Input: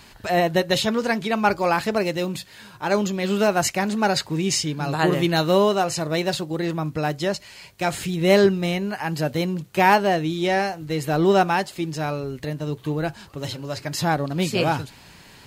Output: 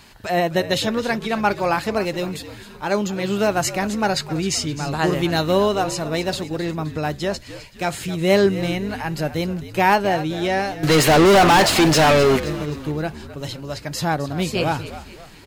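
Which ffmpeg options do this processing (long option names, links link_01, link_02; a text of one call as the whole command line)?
ffmpeg -i in.wav -filter_complex "[0:a]asettb=1/sr,asplit=3[link_01][link_02][link_03];[link_01]atrim=end=10.834[link_04];[link_02]atrim=start=10.83:end=12.4,asetpts=PTS-STARTPTS,afade=type=in:duration=0.004:curve=qsin,afade=type=out:start_time=1.566:duration=0.004:curve=qsin,asplit=2[link_05][link_06];[link_06]highpass=frequency=720:poles=1,volume=36dB,asoftclip=type=tanh:threshold=-6.5dB[link_07];[link_05][link_07]amix=inputs=2:normalize=0,lowpass=frequency=4700:poles=1,volume=-6dB[link_08];[link_03]atrim=start=12.396[link_09];[link_04][link_08]acrossfade=duration=0.004:curve1=hsin:curve2=qsin[link_10];[link_10][link_09]acrossfade=duration=0.004:curve1=qsin:curve2=hsin,asplit=5[link_11][link_12][link_13][link_14][link_15];[link_12]adelay=261,afreqshift=-72,volume=-14dB[link_16];[link_13]adelay=522,afreqshift=-144,volume=-20.7dB[link_17];[link_14]adelay=783,afreqshift=-216,volume=-27.5dB[link_18];[link_15]adelay=1044,afreqshift=-288,volume=-34.2dB[link_19];[link_11][link_16][link_17][link_18][link_19]amix=inputs=5:normalize=0" out.wav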